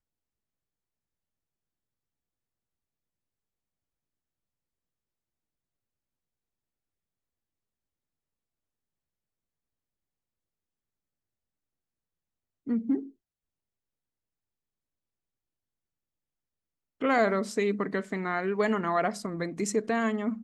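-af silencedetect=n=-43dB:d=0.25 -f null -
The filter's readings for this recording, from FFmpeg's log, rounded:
silence_start: 0.00
silence_end: 12.67 | silence_duration: 12.67
silence_start: 13.09
silence_end: 17.01 | silence_duration: 3.92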